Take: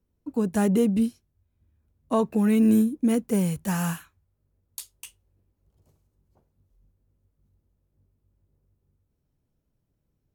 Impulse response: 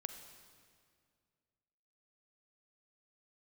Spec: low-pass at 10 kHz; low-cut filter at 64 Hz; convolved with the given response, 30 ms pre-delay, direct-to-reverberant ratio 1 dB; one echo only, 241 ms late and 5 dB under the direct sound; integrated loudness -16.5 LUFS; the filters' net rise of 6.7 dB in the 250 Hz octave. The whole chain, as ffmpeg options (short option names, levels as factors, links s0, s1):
-filter_complex "[0:a]highpass=64,lowpass=10000,equalizer=f=250:t=o:g=8,aecho=1:1:241:0.562,asplit=2[s0][s1];[1:a]atrim=start_sample=2205,adelay=30[s2];[s1][s2]afir=irnorm=-1:irlink=0,volume=1.12[s3];[s0][s3]amix=inputs=2:normalize=0,volume=0.891"